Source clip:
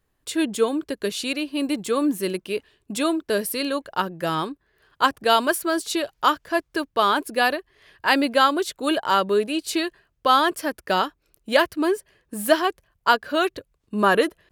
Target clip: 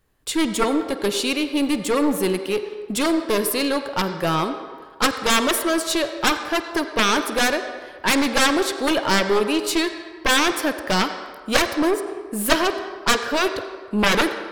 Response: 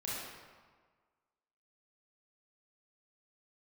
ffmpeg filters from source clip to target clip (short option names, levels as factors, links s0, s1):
-filter_complex "[0:a]aeval=exprs='0.668*(cos(1*acos(clip(val(0)/0.668,-1,1)))-cos(1*PI/2))+0.15*(cos(3*acos(clip(val(0)/0.668,-1,1)))-cos(3*PI/2))+0.0944*(cos(6*acos(clip(val(0)/0.668,-1,1)))-cos(6*PI/2))+0.237*(cos(7*acos(clip(val(0)/0.668,-1,1)))-cos(7*PI/2))':c=same,asplit=2[s0][s1];[s1]highpass=360,equalizer=f=420:t=q:w=4:g=6,equalizer=f=2700:t=q:w=4:g=-5,equalizer=f=6900:t=q:w=4:g=-6,lowpass=f=8100:w=0.5412,lowpass=f=8100:w=1.3066[s2];[1:a]atrim=start_sample=2205,adelay=50[s3];[s2][s3]afir=irnorm=-1:irlink=0,volume=0.299[s4];[s0][s4]amix=inputs=2:normalize=0,volume=0.841"